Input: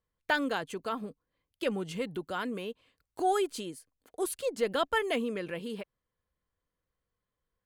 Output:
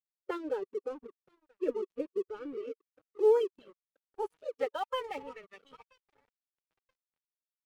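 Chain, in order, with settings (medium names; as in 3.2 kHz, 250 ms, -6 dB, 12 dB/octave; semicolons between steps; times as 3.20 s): dynamic bell 520 Hz, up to +4 dB, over -41 dBFS, Q 2.6; comb 2.6 ms, depth 85%; in parallel at -3.5 dB: short-mantissa float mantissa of 2-bit; on the sum: peaking EQ 670 Hz -7.5 dB 0.54 oct; on a send: filtered feedback delay 978 ms, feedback 55%, low-pass 4.6 kHz, level -18 dB; on the sum: formant-preserving pitch shift +2.5 st; reverb removal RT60 0.61 s; band-pass sweep 400 Hz -> 870 Hz, 2.84–4.99 s; crossover distortion -49 dBFS; spectral noise reduction 9 dB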